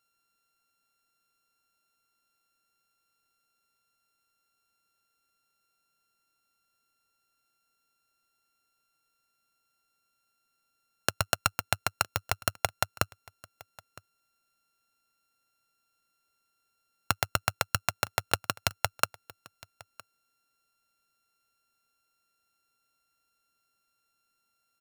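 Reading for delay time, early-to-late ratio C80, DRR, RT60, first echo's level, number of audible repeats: 962 ms, no reverb, no reverb, no reverb, -23.0 dB, 1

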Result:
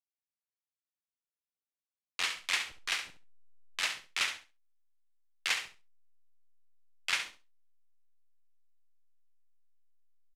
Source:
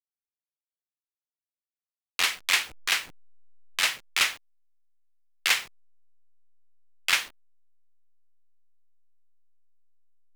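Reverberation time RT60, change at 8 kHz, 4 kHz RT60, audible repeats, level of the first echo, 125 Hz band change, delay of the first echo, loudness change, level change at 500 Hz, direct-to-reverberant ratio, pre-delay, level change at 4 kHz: no reverb, -9.0 dB, no reverb, 2, -9.5 dB, no reading, 68 ms, -8.0 dB, -7.5 dB, no reverb, no reverb, -7.5 dB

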